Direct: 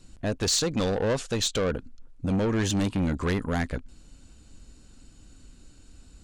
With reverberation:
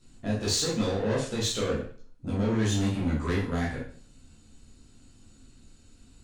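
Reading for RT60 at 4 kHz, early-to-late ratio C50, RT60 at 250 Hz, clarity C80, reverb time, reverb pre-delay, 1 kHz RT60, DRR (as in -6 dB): 0.45 s, 4.0 dB, 0.50 s, 9.0 dB, 0.45 s, 8 ms, 0.45 s, -7.0 dB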